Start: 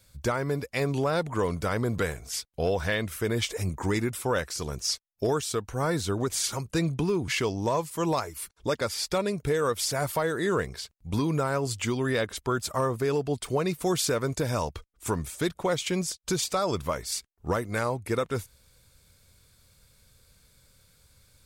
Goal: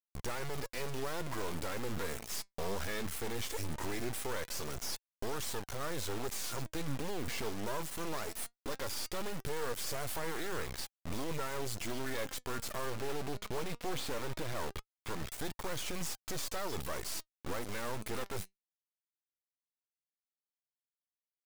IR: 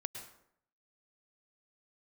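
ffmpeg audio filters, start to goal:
-filter_complex "[0:a]asettb=1/sr,asplit=3[link_01][link_02][link_03];[link_01]atrim=end=12.854[link_04];[link_02]atrim=start=12.85:end=15.32,asetpts=PTS-STARTPTS,afade=type=in:duration=0.004:curve=qsin,afade=type=out:start_time=2.466:duration=0.004:curve=qsin,lowpass=frequency=3700:width=0.5412,lowpass=frequency=3700:width=1.3066[link_05];[link_03]atrim=start=15.316[link_06];[link_04][link_05]acrossfade=duration=0.004:curve1=hsin:curve2=qsin[link_07];[link_07][link_06]acrossfade=duration=0.004:curve1=qsin:curve2=hsin,alimiter=level_in=3.5dB:limit=-24dB:level=0:latency=1:release=13,volume=-3.5dB,acrusher=bits=4:dc=4:mix=0:aa=0.000001,flanger=delay=0.6:depth=4.7:regen=79:speed=0.19:shape=triangular,volume=5dB"

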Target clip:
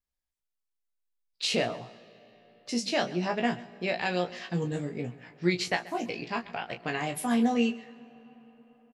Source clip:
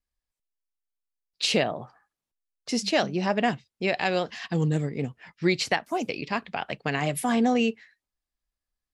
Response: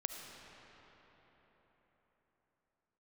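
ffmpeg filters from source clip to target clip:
-filter_complex "[0:a]aecho=1:1:17|34:0.596|0.335,asplit=2[link_01][link_02];[1:a]atrim=start_sample=2205,adelay=133[link_03];[link_02][link_03]afir=irnorm=-1:irlink=0,volume=-17dB[link_04];[link_01][link_04]amix=inputs=2:normalize=0,volume=-5.5dB"

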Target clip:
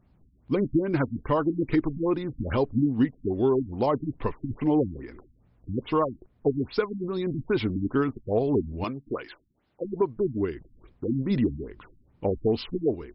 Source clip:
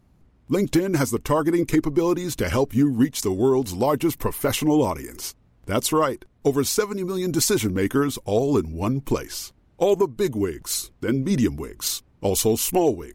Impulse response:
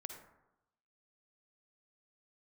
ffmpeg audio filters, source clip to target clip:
-filter_complex "[0:a]asettb=1/sr,asplit=3[link_01][link_02][link_03];[link_01]atrim=end=8.844[link_04];[link_02]atrim=start=8.84:end=9.85,asetpts=PTS-STARTPTS,afade=type=in:duration=0.004:curve=qsin,afade=type=out:start_time=1.006:duration=0.004:curve=qsin,aemphasis=mode=production:type=riaa[link_05];[link_03]atrim=start=9.846[link_06];[link_04][link_05]acrossfade=duration=0.004:curve1=hsin:curve2=qsin[link_07];[link_07][link_06]acrossfade=duration=0.004:curve1=qsin:curve2=hsin,afftfilt=real='re*lt(b*sr/1024,290*pow(5500/290,0.5+0.5*sin(2*PI*2.4*pts/sr)))':imag='im*lt(b*sr/1024,290*pow(5500/290,0.5+0.5*sin(2*PI*2.4*pts/sr)))':win_size=1024:overlap=0.75,volume=-3.5dB"

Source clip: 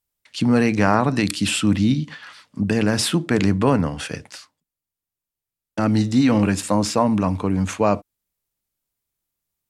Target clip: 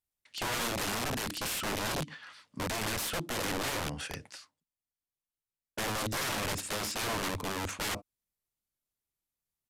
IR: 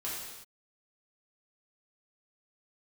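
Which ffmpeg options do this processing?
-af "aeval=exprs='(mod(8.91*val(0)+1,2)-1)/8.91':channel_layout=same,aresample=32000,aresample=44100,volume=-9dB"

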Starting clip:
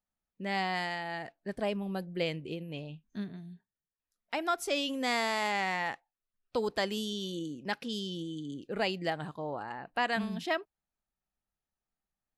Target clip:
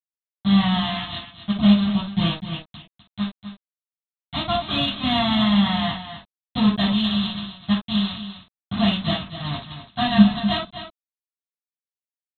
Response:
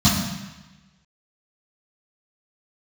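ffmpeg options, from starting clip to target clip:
-filter_complex "[0:a]aeval=exprs='0.112*(cos(1*acos(clip(val(0)/0.112,-1,1)))-cos(1*PI/2))+0.000891*(cos(4*acos(clip(val(0)/0.112,-1,1)))-cos(4*PI/2))':channel_layout=same,aresample=8000,acrusher=bits=4:mix=0:aa=0.000001,aresample=44100,aecho=1:1:252:0.299[link_01];[1:a]atrim=start_sample=2205,atrim=end_sample=3528[link_02];[link_01][link_02]afir=irnorm=-1:irlink=0,aexciter=amount=3.3:drive=2.9:freq=3000,volume=-14.5dB"

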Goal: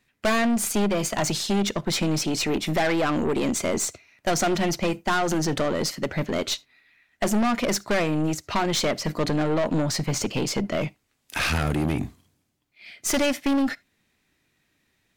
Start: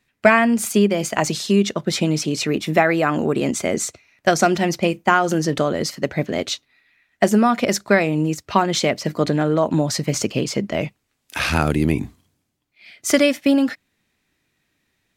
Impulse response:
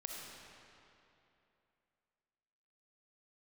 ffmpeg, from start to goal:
-filter_complex "[0:a]asettb=1/sr,asplit=3[link_01][link_02][link_03];[link_01]atrim=end=9.824[link_04];[link_02]atrim=start=9.82:end=10.33,asetpts=PTS-STARTPTS,afade=type=in:duration=0.004:curve=qsin,afade=type=out:start_time=0.506:duration=0.004:curve=qsin,highshelf=frequency=5200:gain=-4.5[link_05];[link_03]atrim=start=10.326[link_06];[link_04][link_05]acrossfade=duration=0.004:curve1=hsin:curve2=qsin[link_07];[link_07][link_06]acrossfade=duration=0.004:curve1=qsin:curve2=hsin,aeval=exprs='(tanh(10*val(0)+0.3)-tanh(0.3))/10':channel_layout=same,asplit=2[link_08][link_09];[1:a]atrim=start_sample=2205,afade=type=out:start_time=0.14:duration=0.01,atrim=end_sample=6615,asetrate=48510,aresample=44100[link_10];[link_09][link_10]afir=irnorm=-1:irlink=0,volume=-13.5dB[link_11];[link_08][link_11]amix=inputs=2:normalize=0"

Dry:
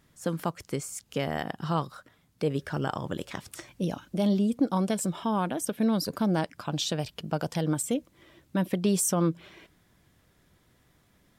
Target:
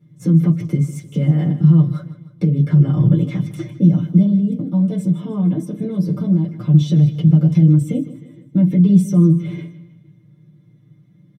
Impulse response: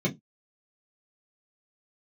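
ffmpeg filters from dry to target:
-filter_complex "[0:a]agate=range=-14dB:threshold=-50dB:ratio=16:detection=peak,equalizer=frequency=76:width=0.34:gain=10,aecho=1:1:6.6:0.79,acompressor=threshold=-22dB:ratio=6,alimiter=level_in=3dB:limit=-24dB:level=0:latency=1:release=320,volume=-3dB,asettb=1/sr,asplit=3[link_01][link_02][link_03];[link_01]atrim=end=4.224[link_04];[link_02]atrim=start=4.22:end=6.69,asetpts=PTS-STARTPTS,afade=type=in:duration=0.004:curve=qsin,afade=type=out:start_time=2.466:duration=0.004:curve=qsin,flanger=delay=8.7:depth=2.8:regen=88:speed=1.3:shape=sinusoidal[link_05];[link_03]atrim=start=6.686[link_06];[link_04][link_05]acrossfade=duration=0.004:curve1=hsin:curve2=qsin[link_07];[link_07][link_06]acrossfade=duration=0.004:curve1=qsin:curve2=hsin,aecho=1:1:155|310|465|620:0.158|0.0729|0.0335|0.0154[link_08];[1:a]atrim=start_sample=2205,asetrate=41895,aresample=44100[link_09];[link_08][link_09]afir=irnorm=-1:irlink=0,volume=-1dB"

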